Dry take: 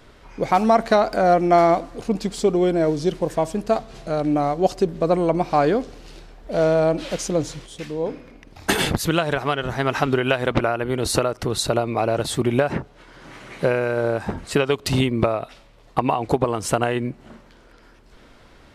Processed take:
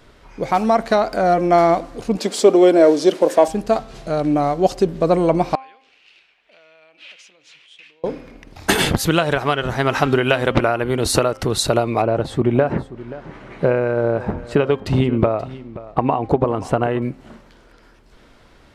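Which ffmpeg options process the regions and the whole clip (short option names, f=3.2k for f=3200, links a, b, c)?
-filter_complex "[0:a]asettb=1/sr,asplit=3[a][b][c];[a]atrim=end=2.184[d];[b]atrim=start=2.18:end=3.48,asetpts=PTS-STARTPTS,afade=t=in:d=0.004:c=qsin,afade=t=out:st=1.296:d=0.004:c=qsin,highpass=f=250:w=0.5412,highpass=f=250:w=1.3066,equalizer=f=580:w=6.7:g=6.5,acontrast=29[e];[c]atrim=start=3.476[f];[d][e]acrossfade=d=0.004:c1=hsin:c2=qsin[g];[g][f]acrossfade=d=0.004:c1=qsin:c2=hsin,asettb=1/sr,asplit=3[h][i][j];[h]atrim=end=5.554[k];[i]atrim=start=5.55:end=8.04,asetpts=PTS-STARTPTS,afade=t=in:d=0.004:c=qsin,afade=t=out:st=2.486:d=0.004:c=qsin,acompressor=threshold=-30dB:ratio=8:attack=3.2:release=140:knee=1:detection=peak,bandpass=f=2.6k:t=q:w=3.9[l];[j]atrim=start=8.036[m];[k][l]acrossfade=d=0.004:c1=hsin:c2=qsin[n];[n][m]acrossfade=d=0.004:c1=qsin:c2=hsin,asettb=1/sr,asplit=3[o][p][q];[o]atrim=end=12.024[r];[p]atrim=start=12.02:end=17.02,asetpts=PTS-STARTPTS,afade=t=in:d=0.004:c=qsin,afade=t=out:st=4.996:d=0.004:c=qsin,lowpass=f=1.1k:p=1,aecho=1:1:530:0.141,atrim=end_sample=220500[s];[q]atrim=start=17.016[t];[r][s]acrossfade=d=0.004:c1=hsin:c2=qsin[u];[u][t]acrossfade=d=0.004:c1=qsin:c2=hsin,bandreject=f=264.7:t=h:w=4,bandreject=f=529.4:t=h:w=4,bandreject=f=794.1:t=h:w=4,bandreject=f=1.0588k:t=h:w=4,bandreject=f=1.3235k:t=h:w=4,bandreject=f=1.5882k:t=h:w=4,bandreject=f=1.8529k:t=h:w=4,bandreject=f=2.1176k:t=h:w=4,bandreject=f=2.3823k:t=h:w=4,bandreject=f=2.647k:t=h:w=4,bandreject=f=2.9117k:t=h:w=4,bandreject=f=3.1764k:t=h:w=4,dynaudnorm=f=100:g=31:m=7dB"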